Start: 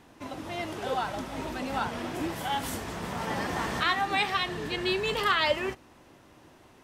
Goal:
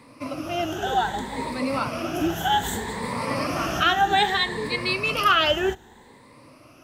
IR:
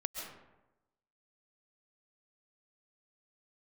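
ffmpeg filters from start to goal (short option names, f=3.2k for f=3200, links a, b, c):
-filter_complex "[0:a]afftfilt=real='re*pow(10,14/40*sin(2*PI*(0.96*log(max(b,1)*sr/1024/100)/log(2)-(0.63)*(pts-256)/sr)))':imag='im*pow(10,14/40*sin(2*PI*(0.96*log(max(b,1)*sr/1024/100)/log(2)-(0.63)*(pts-256)/sr)))':win_size=1024:overlap=0.75,acrossover=split=160|930[a][b][c];[a]acrusher=bits=3:mode=log:mix=0:aa=0.000001[d];[d][b][c]amix=inputs=3:normalize=0,volume=3.5dB"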